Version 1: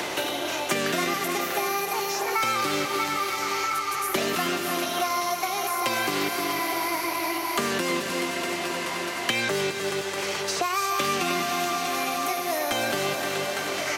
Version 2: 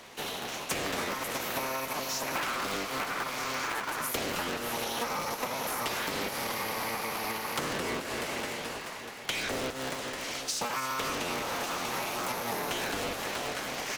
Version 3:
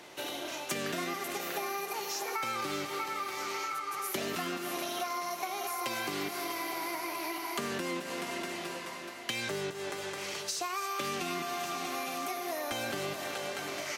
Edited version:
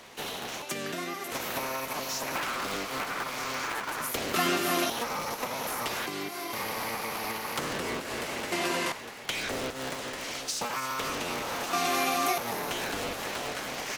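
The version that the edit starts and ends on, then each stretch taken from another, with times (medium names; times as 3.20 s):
2
0.62–1.32 s: from 3
4.34–4.90 s: from 1
6.06–6.53 s: from 3
8.52–8.92 s: from 1
11.73–12.38 s: from 1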